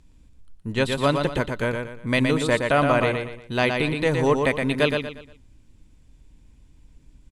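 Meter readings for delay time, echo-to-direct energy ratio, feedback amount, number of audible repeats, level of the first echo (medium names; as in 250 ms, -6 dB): 118 ms, -4.5 dB, 34%, 4, -5.0 dB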